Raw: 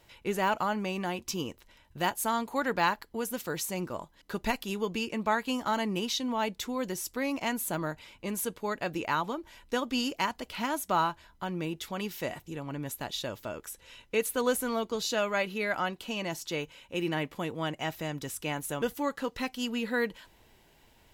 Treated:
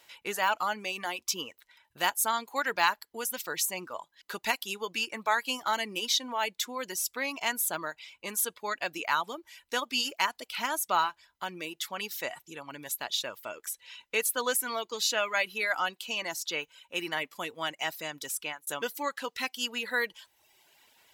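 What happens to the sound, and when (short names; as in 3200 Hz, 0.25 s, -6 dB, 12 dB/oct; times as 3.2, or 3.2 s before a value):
18.26–18.67 fade out equal-power
whole clip: reverb removal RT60 0.86 s; HPF 1400 Hz 6 dB/oct; gain +6 dB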